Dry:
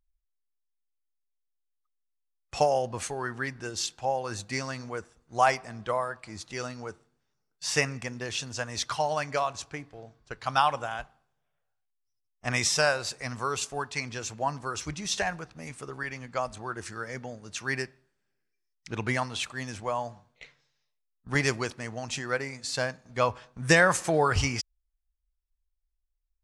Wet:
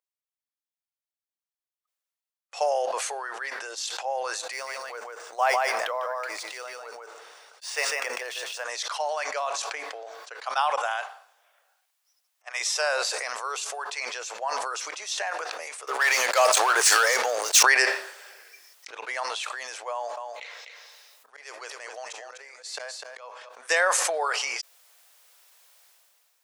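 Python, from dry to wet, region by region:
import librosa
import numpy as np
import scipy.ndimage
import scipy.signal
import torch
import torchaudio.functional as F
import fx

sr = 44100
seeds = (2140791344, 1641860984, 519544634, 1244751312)

y = fx.chain(x, sr, fx.echo_single(ms=149, db=-3.5),
    fx.resample_linear(factor=3), at=(4.52, 8.64))
y = fx.chain(y, sr, fx.highpass(hz=600.0, slope=12),
    fx.upward_expand(threshold_db=-38.0, expansion=2.5), at=(10.76, 12.6))
y = fx.chain(y, sr, fx.peak_eq(hz=8500.0, db=9.0, octaves=2.4),
    fx.leveller(passes=5),
    fx.band_widen(depth_pct=70), at=(15.87, 17.63))
y = fx.chain(y, sr, fx.auto_swell(attack_ms=501.0),
    fx.echo_single(ms=250, db=-10.0), at=(19.92, 23.49))
y = scipy.signal.sosfilt(scipy.signal.butter(6, 490.0, 'highpass', fs=sr, output='sos'), y)
y = fx.sustainer(y, sr, db_per_s=21.0)
y = F.gain(torch.from_numpy(y), -2.0).numpy()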